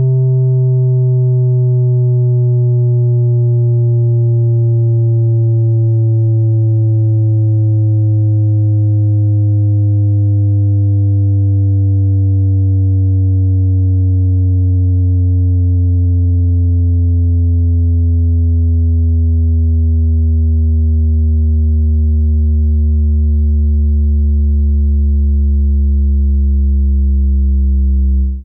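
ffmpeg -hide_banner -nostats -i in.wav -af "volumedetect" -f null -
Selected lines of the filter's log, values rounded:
mean_volume: -10.4 dB
max_volume: -8.8 dB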